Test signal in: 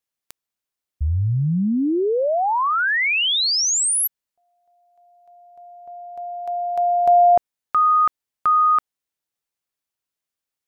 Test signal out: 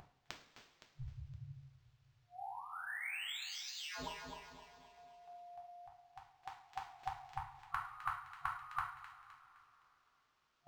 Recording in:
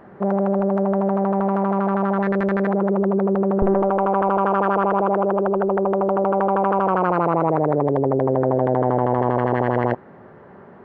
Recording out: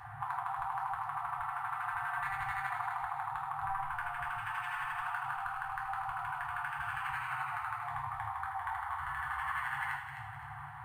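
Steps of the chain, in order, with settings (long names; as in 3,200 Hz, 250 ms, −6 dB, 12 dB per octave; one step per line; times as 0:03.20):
steady tone 510 Hz −25 dBFS
gate on every frequency bin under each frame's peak −15 dB weak
downward compressor 2 to 1, threshold −40 dBFS
brick-wall band-stop 140–710 Hz
soft clipping −19.5 dBFS
on a send: delay with a high-pass on its return 258 ms, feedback 41%, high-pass 2,300 Hz, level −5 dB
on the sum: coupled-rooms reverb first 0.47 s, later 3.3 s, from −18 dB, DRR −2.5 dB
linearly interpolated sample-rate reduction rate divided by 4×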